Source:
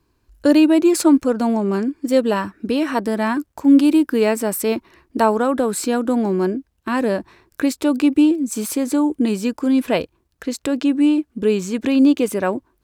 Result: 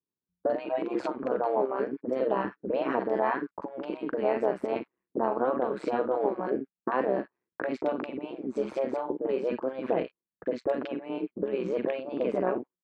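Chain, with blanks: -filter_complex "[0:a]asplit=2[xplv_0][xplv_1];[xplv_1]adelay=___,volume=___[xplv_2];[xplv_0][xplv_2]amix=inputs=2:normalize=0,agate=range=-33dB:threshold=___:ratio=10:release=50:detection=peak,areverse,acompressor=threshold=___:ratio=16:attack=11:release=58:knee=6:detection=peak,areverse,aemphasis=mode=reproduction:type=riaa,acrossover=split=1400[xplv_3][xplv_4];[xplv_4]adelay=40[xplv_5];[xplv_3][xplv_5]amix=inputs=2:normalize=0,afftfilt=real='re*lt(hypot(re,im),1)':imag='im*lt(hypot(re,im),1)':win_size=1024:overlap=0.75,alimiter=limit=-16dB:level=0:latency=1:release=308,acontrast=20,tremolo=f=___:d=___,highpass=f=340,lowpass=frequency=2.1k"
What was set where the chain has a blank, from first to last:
48, -13.5dB, -39dB, -20dB, 130, 0.824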